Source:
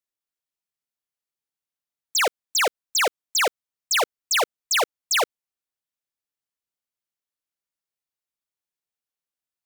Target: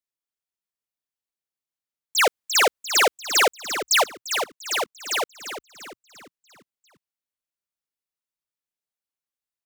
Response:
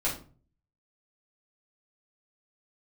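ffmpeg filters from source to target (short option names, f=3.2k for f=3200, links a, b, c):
-filter_complex "[0:a]asplit=6[a][b][c][d][e][f];[b]adelay=346,afreqshift=-62,volume=-10dB[g];[c]adelay=692,afreqshift=-124,volume=-16.6dB[h];[d]adelay=1038,afreqshift=-186,volume=-23.1dB[i];[e]adelay=1384,afreqshift=-248,volume=-29.7dB[j];[f]adelay=1730,afreqshift=-310,volume=-36.2dB[k];[a][g][h][i][j][k]amix=inputs=6:normalize=0,asplit=3[l][m][n];[l]afade=t=out:st=2.17:d=0.02[o];[m]acontrast=82,afade=t=in:st=2.17:d=0.02,afade=t=out:st=4.02:d=0.02[p];[n]afade=t=in:st=4.02:d=0.02[q];[o][p][q]amix=inputs=3:normalize=0,volume=-4dB"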